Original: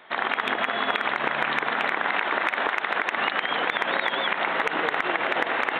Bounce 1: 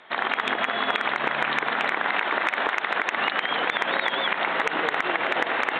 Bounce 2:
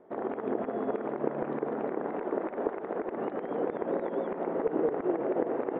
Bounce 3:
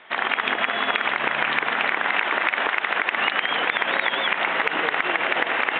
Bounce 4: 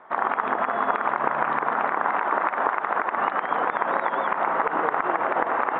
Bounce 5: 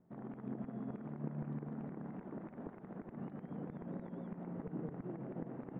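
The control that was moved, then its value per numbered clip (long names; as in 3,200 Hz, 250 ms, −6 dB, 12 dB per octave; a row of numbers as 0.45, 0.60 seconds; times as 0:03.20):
low-pass with resonance, frequency: 7,600, 420, 2,900, 1,100, 160 Hertz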